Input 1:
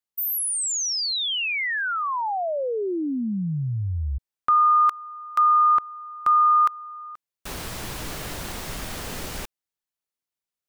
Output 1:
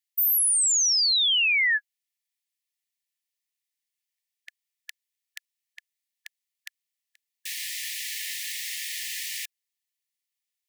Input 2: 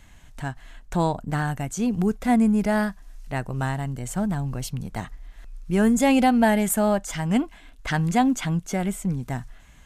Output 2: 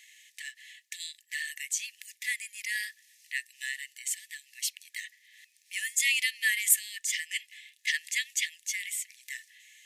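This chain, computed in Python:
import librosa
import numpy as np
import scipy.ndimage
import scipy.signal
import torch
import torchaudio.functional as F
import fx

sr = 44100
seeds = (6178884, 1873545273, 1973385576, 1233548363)

y = fx.brickwall_highpass(x, sr, low_hz=1700.0)
y = y * librosa.db_to_amplitude(4.0)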